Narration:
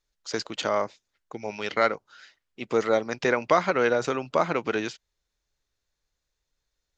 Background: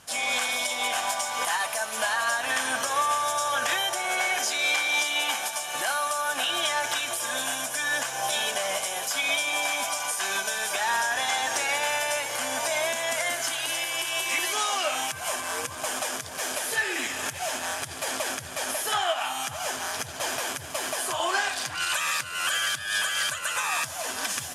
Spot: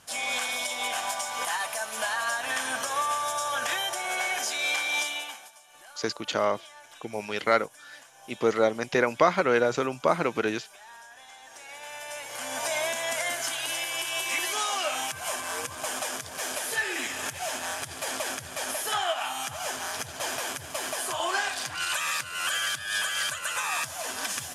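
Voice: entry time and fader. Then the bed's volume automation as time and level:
5.70 s, 0.0 dB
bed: 5.06 s -3 dB
5.57 s -22.5 dB
11.38 s -22.5 dB
12.67 s -2 dB

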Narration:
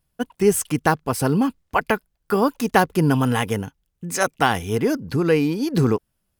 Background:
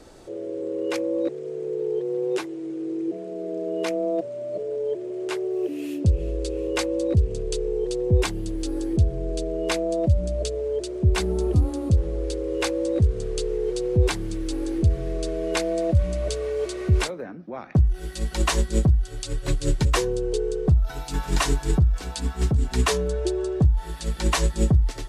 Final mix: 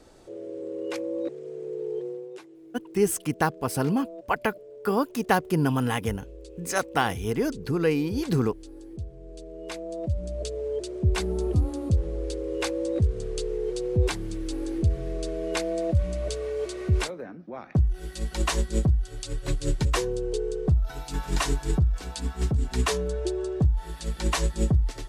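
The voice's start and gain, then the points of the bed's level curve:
2.55 s, -5.5 dB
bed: 2.06 s -5.5 dB
2.31 s -16.5 dB
9.19 s -16.5 dB
10.65 s -3.5 dB

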